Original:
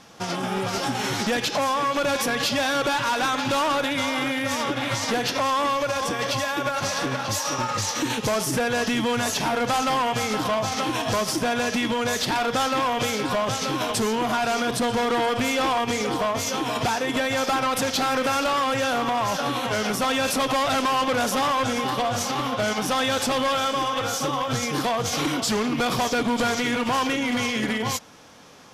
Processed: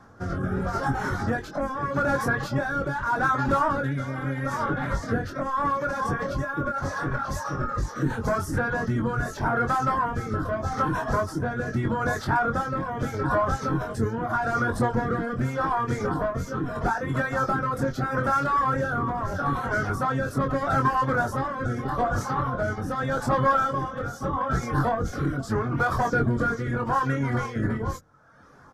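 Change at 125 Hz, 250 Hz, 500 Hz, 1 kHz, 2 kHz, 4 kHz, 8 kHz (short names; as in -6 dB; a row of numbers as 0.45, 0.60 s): +6.5, -2.0, -3.5, -1.5, -2.5, -19.5, -15.5 dB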